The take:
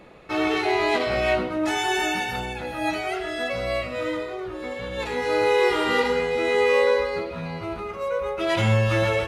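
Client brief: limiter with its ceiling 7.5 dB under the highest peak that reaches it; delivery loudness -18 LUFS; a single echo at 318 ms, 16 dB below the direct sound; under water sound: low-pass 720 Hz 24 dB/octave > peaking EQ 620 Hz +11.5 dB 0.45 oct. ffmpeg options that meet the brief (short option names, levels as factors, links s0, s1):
-af "alimiter=limit=0.168:level=0:latency=1,lowpass=f=720:w=0.5412,lowpass=f=720:w=1.3066,equalizer=f=620:t=o:w=0.45:g=11.5,aecho=1:1:318:0.158,volume=1.78"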